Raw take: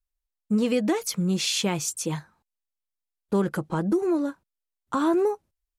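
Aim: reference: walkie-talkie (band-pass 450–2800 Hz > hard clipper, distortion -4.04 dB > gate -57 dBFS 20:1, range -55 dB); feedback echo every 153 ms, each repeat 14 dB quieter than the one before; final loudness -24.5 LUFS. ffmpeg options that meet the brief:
-af "highpass=450,lowpass=2800,aecho=1:1:153|306:0.2|0.0399,asoftclip=type=hard:threshold=0.0158,agate=range=0.00178:threshold=0.00141:ratio=20,volume=5.62"

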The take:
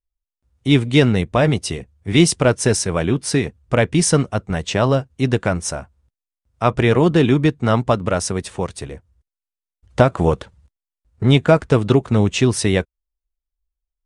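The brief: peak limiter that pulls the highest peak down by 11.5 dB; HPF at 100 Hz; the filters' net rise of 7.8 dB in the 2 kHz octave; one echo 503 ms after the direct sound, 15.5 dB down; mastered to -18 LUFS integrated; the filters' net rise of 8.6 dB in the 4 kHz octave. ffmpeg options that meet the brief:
-af "highpass=100,equalizer=f=2000:t=o:g=7.5,equalizer=f=4000:t=o:g=8.5,alimiter=limit=0.501:level=0:latency=1,aecho=1:1:503:0.168,volume=1.19"

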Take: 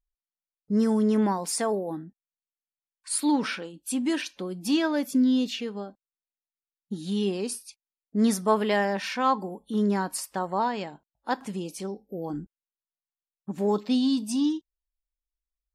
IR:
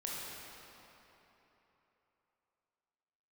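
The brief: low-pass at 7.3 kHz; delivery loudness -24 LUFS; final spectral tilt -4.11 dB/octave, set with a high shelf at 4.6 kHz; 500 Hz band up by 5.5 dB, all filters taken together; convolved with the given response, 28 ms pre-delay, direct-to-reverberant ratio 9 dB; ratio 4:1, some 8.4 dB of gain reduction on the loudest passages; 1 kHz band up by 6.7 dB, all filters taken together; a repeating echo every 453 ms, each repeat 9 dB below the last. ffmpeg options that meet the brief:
-filter_complex "[0:a]lowpass=7300,equalizer=f=500:t=o:g=5.5,equalizer=f=1000:t=o:g=6,highshelf=f=4600:g=8.5,acompressor=threshold=0.0891:ratio=4,aecho=1:1:453|906|1359|1812:0.355|0.124|0.0435|0.0152,asplit=2[s0][s1];[1:a]atrim=start_sample=2205,adelay=28[s2];[s1][s2]afir=irnorm=-1:irlink=0,volume=0.282[s3];[s0][s3]amix=inputs=2:normalize=0,volume=1.33"

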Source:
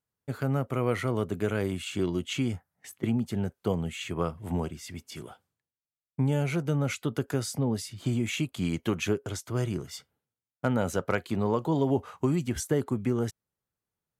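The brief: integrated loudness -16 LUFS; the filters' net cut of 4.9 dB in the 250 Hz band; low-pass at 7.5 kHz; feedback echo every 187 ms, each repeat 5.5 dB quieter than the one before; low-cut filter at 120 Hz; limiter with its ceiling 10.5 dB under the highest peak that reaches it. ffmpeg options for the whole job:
-af "highpass=120,lowpass=7500,equalizer=f=250:t=o:g=-6,alimiter=limit=0.0668:level=0:latency=1,aecho=1:1:187|374|561|748|935|1122|1309:0.531|0.281|0.149|0.079|0.0419|0.0222|0.0118,volume=7.94"

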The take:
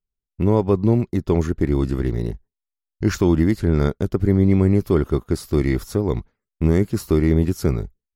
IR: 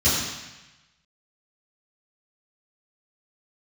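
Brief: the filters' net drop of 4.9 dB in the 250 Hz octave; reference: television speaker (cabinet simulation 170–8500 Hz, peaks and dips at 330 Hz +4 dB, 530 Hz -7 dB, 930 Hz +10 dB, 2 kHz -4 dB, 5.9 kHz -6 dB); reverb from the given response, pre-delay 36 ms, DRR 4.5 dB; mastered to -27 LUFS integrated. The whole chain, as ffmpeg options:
-filter_complex "[0:a]equalizer=f=250:t=o:g=-9,asplit=2[s0][s1];[1:a]atrim=start_sample=2205,adelay=36[s2];[s1][s2]afir=irnorm=-1:irlink=0,volume=0.0891[s3];[s0][s3]amix=inputs=2:normalize=0,highpass=f=170:w=0.5412,highpass=f=170:w=1.3066,equalizer=f=330:t=q:w=4:g=4,equalizer=f=530:t=q:w=4:g=-7,equalizer=f=930:t=q:w=4:g=10,equalizer=f=2000:t=q:w=4:g=-4,equalizer=f=5900:t=q:w=4:g=-6,lowpass=f=8500:w=0.5412,lowpass=f=8500:w=1.3066,volume=0.596"

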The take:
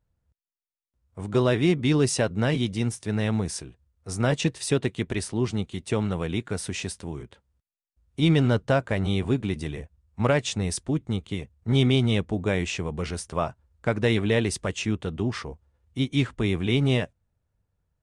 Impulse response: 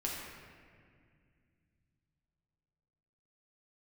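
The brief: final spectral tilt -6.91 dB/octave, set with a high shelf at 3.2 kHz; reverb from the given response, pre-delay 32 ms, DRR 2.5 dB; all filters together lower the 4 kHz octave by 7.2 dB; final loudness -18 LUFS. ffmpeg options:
-filter_complex "[0:a]highshelf=f=3200:g=-3,equalizer=f=4000:t=o:g=-7.5,asplit=2[s0][s1];[1:a]atrim=start_sample=2205,adelay=32[s2];[s1][s2]afir=irnorm=-1:irlink=0,volume=0.531[s3];[s0][s3]amix=inputs=2:normalize=0,volume=2"

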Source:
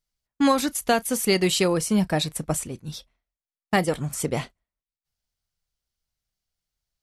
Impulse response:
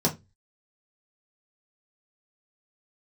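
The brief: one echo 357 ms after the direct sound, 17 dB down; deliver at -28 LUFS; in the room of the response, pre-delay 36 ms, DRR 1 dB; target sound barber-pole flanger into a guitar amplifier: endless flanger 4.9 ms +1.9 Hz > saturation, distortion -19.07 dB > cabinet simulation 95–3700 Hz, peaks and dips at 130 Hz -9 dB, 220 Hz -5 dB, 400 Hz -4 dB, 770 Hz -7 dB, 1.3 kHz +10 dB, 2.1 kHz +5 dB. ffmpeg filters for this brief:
-filter_complex "[0:a]aecho=1:1:357:0.141,asplit=2[s0][s1];[1:a]atrim=start_sample=2205,adelay=36[s2];[s1][s2]afir=irnorm=-1:irlink=0,volume=0.251[s3];[s0][s3]amix=inputs=2:normalize=0,asplit=2[s4][s5];[s5]adelay=4.9,afreqshift=1.9[s6];[s4][s6]amix=inputs=2:normalize=1,asoftclip=threshold=0.447,highpass=95,equalizer=f=130:t=q:w=4:g=-9,equalizer=f=220:t=q:w=4:g=-5,equalizer=f=400:t=q:w=4:g=-4,equalizer=f=770:t=q:w=4:g=-7,equalizer=f=1300:t=q:w=4:g=10,equalizer=f=2100:t=q:w=4:g=5,lowpass=f=3700:w=0.5412,lowpass=f=3700:w=1.3066,volume=0.596"

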